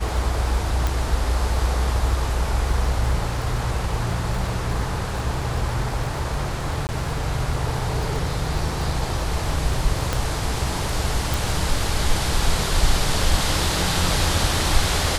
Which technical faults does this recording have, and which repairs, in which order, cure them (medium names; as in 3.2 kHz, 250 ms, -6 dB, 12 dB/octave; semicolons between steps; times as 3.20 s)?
crackle 29 per s -29 dBFS
0.87 s: pop
6.87–6.89 s: dropout 19 ms
10.13 s: pop
11.34 s: pop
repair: de-click; interpolate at 6.87 s, 19 ms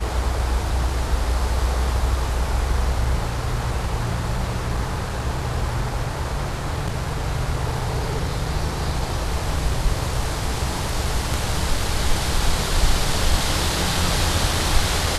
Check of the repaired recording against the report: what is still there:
0.87 s: pop
10.13 s: pop
11.34 s: pop